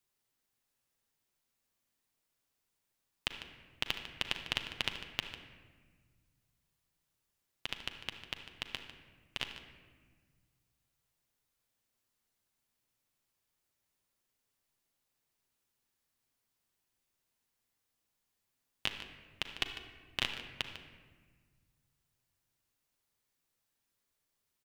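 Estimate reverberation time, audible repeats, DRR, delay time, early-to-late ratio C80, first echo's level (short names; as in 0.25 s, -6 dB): 1.5 s, 1, 4.5 dB, 0.149 s, 8.0 dB, -12.5 dB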